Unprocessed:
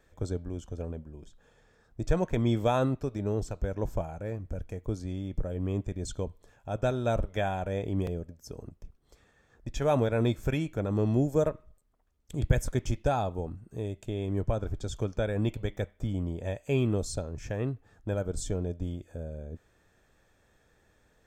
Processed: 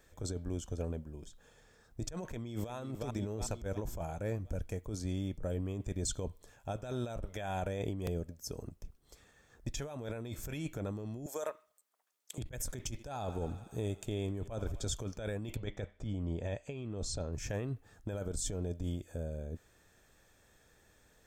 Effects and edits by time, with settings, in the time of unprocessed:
0:02.25–0:02.74: delay throw 360 ms, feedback 45%, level −11.5 dB
0:11.26–0:12.38: high-pass filter 720 Hz
0:12.90–0:14.93: feedback echo with a high-pass in the loop 86 ms, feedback 81%, high-pass 410 Hz, level −20 dB
0:15.56–0:17.33: high-frequency loss of the air 96 metres
whole clip: high-shelf EQ 4,100 Hz +9.5 dB; compressor whose output falls as the input rises −33 dBFS, ratio −1; level −4.5 dB

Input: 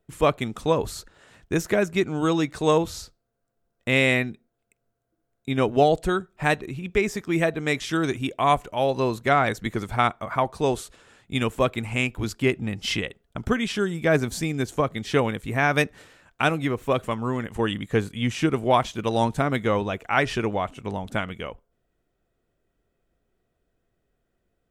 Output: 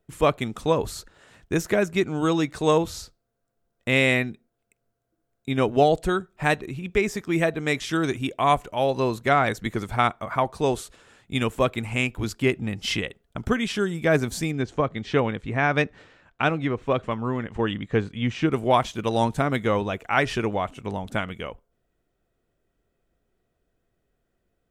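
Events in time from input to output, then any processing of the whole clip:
0:14.51–0:18.52: high-frequency loss of the air 130 metres

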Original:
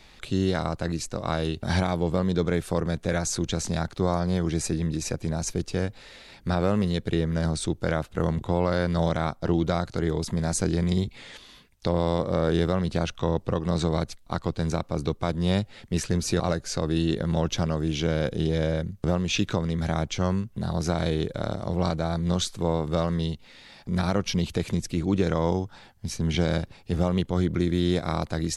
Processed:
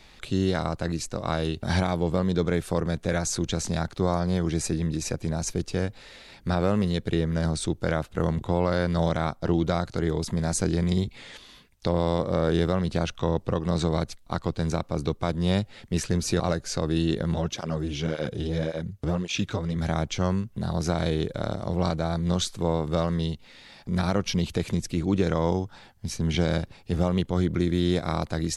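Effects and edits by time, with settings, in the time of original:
0:17.34–0:19.76: through-zero flanger with one copy inverted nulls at 1.8 Hz, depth 6.1 ms

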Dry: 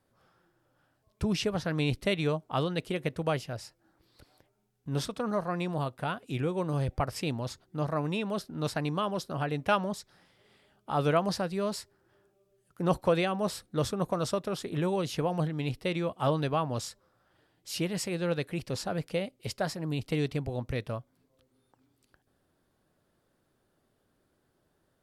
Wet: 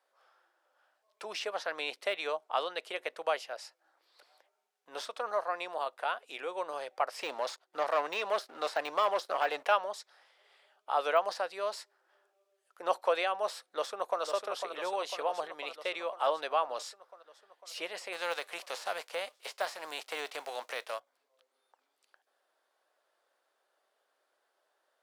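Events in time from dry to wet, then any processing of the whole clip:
0:07.19–0:09.68: leveller curve on the samples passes 2
0:13.68–0:14.22: delay throw 500 ms, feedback 70%, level −6.5 dB
0:18.12–0:20.98: spectral envelope flattened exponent 0.6
whole clip: de-essing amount 90%; high-pass filter 560 Hz 24 dB per octave; high-shelf EQ 9,400 Hz −11.5 dB; level +1.5 dB

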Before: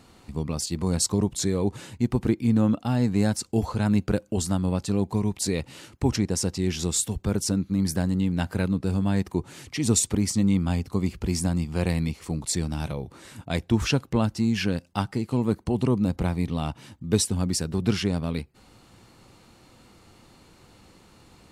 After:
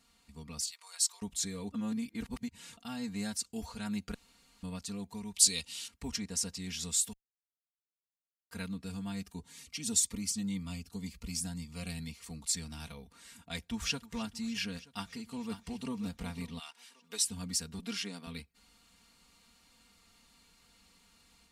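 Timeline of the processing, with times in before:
0:00.70–0:01.22: Bessel high-pass filter 1,200 Hz, order 6
0:01.72–0:02.77: reverse
0:04.14–0:04.63: fill with room tone
0:05.34–0:05.88: flat-topped bell 5,600 Hz +12 dB 2.4 octaves
0:07.13–0:08.51: silence
0:09.12–0:12.09: phaser whose notches keep moving one way rising 1.9 Hz
0:13.50–0:14.11: delay throw 310 ms, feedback 80%, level −18 dB
0:14.86–0:15.91: delay throw 540 ms, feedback 40%, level −9.5 dB
0:16.58–0:17.24: high-pass filter 1,300 Hz → 450 Hz
0:17.79–0:18.27: high-pass filter 200 Hz 24 dB per octave
whole clip: guitar amp tone stack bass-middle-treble 5-5-5; comb filter 4.3 ms, depth 96%; automatic gain control gain up to 4 dB; level −5 dB

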